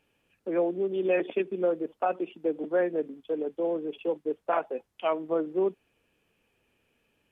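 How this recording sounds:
background noise floor −75 dBFS
spectral slope −2.0 dB per octave

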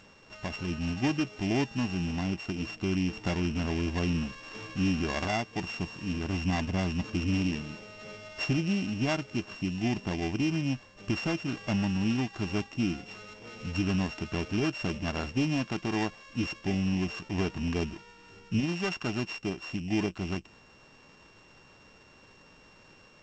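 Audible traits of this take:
a buzz of ramps at a fixed pitch in blocks of 16 samples
G.722

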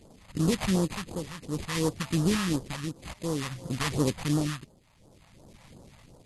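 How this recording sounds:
aliases and images of a low sample rate 1,500 Hz, jitter 20%
phaser sweep stages 2, 2.8 Hz, lowest notch 330–2,200 Hz
tremolo triangle 0.57 Hz, depth 75%
MP2

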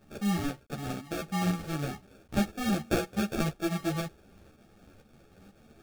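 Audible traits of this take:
a quantiser's noise floor 10 bits, dither none
tremolo saw up 2 Hz, depth 50%
aliases and images of a low sample rate 1,000 Hz, jitter 0%
a shimmering, thickened sound

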